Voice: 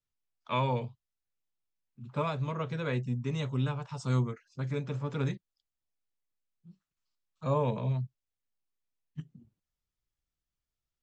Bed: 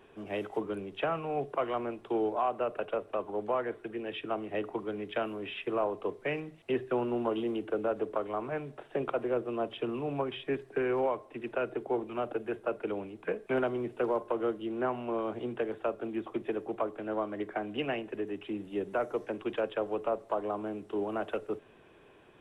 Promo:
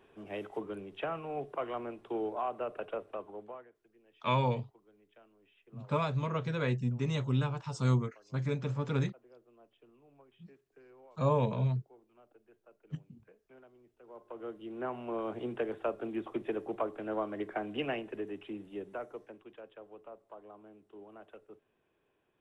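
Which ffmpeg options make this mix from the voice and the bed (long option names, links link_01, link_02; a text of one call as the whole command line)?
ffmpeg -i stem1.wav -i stem2.wav -filter_complex "[0:a]adelay=3750,volume=0.5dB[link_01];[1:a]volume=22dB,afade=type=out:start_time=2.99:duration=0.72:silence=0.0668344,afade=type=in:start_time=14.04:duration=1.41:silence=0.0446684,afade=type=out:start_time=17.85:duration=1.62:silence=0.141254[link_02];[link_01][link_02]amix=inputs=2:normalize=0" out.wav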